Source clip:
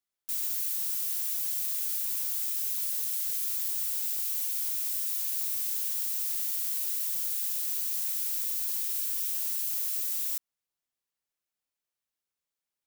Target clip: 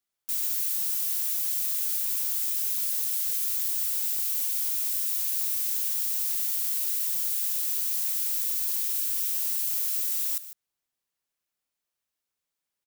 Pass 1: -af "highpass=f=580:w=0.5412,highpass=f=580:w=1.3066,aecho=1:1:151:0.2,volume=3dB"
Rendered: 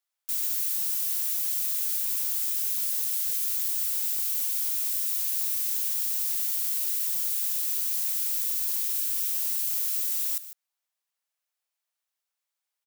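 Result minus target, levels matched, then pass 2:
500 Hz band -3.5 dB
-af "aecho=1:1:151:0.2,volume=3dB"

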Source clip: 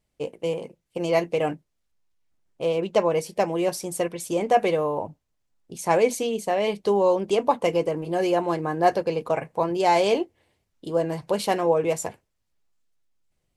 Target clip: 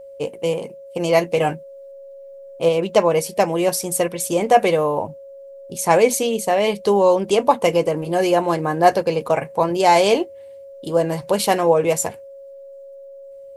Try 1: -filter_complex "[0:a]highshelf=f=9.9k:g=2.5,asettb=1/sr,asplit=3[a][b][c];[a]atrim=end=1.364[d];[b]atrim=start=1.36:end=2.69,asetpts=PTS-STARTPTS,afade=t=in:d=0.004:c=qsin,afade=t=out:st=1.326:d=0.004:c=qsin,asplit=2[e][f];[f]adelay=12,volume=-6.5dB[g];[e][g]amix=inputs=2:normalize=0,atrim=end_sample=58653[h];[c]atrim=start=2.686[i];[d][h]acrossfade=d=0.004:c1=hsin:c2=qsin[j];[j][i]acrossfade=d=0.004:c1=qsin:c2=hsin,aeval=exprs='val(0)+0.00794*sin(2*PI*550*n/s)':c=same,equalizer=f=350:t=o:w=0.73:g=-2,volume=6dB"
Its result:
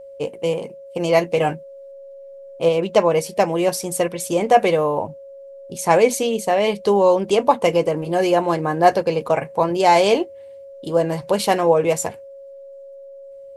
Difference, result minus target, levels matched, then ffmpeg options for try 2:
8000 Hz band -3.0 dB
-filter_complex "[0:a]highshelf=f=9.9k:g=11,asettb=1/sr,asplit=3[a][b][c];[a]atrim=end=1.364[d];[b]atrim=start=1.36:end=2.69,asetpts=PTS-STARTPTS,afade=t=in:d=0.004:c=qsin,afade=t=out:st=1.326:d=0.004:c=qsin,asplit=2[e][f];[f]adelay=12,volume=-6.5dB[g];[e][g]amix=inputs=2:normalize=0,atrim=end_sample=58653[h];[c]atrim=start=2.686[i];[d][h]acrossfade=d=0.004:c1=hsin:c2=qsin[j];[j][i]acrossfade=d=0.004:c1=qsin:c2=hsin,aeval=exprs='val(0)+0.00794*sin(2*PI*550*n/s)':c=same,equalizer=f=350:t=o:w=0.73:g=-2,volume=6dB"

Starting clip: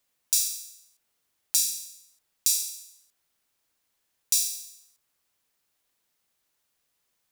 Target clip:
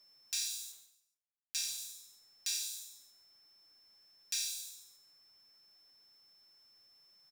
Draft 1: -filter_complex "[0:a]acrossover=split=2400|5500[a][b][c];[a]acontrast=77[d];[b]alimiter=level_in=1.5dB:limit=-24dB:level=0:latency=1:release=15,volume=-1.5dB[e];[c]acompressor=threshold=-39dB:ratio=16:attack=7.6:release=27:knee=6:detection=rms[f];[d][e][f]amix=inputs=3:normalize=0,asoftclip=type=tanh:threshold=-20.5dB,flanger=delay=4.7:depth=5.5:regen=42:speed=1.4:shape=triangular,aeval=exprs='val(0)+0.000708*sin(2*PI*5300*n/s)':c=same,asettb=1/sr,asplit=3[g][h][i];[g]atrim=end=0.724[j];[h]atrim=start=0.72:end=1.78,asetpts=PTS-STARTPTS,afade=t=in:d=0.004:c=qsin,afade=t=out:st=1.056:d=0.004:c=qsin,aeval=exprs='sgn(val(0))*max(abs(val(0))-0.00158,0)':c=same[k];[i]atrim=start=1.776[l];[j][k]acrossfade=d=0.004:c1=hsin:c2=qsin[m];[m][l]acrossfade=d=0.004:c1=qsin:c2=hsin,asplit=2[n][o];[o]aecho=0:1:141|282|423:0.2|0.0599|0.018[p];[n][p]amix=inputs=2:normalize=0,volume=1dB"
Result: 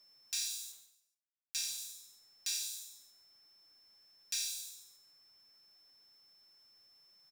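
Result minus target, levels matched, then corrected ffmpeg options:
soft clip: distortion +21 dB
-filter_complex "[0:a]acrossover=split=2400|5500[a][b][c];[a]acontrast=77[d];[b]alimiter=level_in=1.5dB:limit=-24dB:level=0:latency=1:release=15,volume=-1.5dB[e];[c]acompressor=threshold=-39dB:ratio=16:attack=7.6:release=27:knee=6:detection=rms[f];[d][e][f]amix=inputs=3:normalize=0,asoftclip=type=tanh:threshold=-9dB,flanger=delay=4.7:depth=5.5:regen=42:speed=1.4:shape=triangular,aeval=exprs='val(0)+0.000708*sin(2*PI*5300*n/s)':c=same,asettb=1/sr,asplit=3[g][h][i];[g]atrim=end=0.724[j];[h]atrim=start=0.72:end=1.78,asetpts=PTS-STARTPTS,afade=t=in:d=0.004:c=qsin,afade=t=out:st=1.056:d=0.004:c=qsin,aeval=exprs='sgn(val(0))*max(abs(val(0))-0.00158,0)':c=same[k];[i]atrim=start=1.776[l];[j][k]acrossfade=d=0.004:c1=hsin:c2=qsin[m];[m][l]acrossfade=d=0.004:c1=qsin:c2=hsin,asplit=2[n][o];[o]aecho=0:1:141|282|423:0.2|0.0599|0.018[p];[n][p]amix=inputs=2:normalize=0,volume=1dB"

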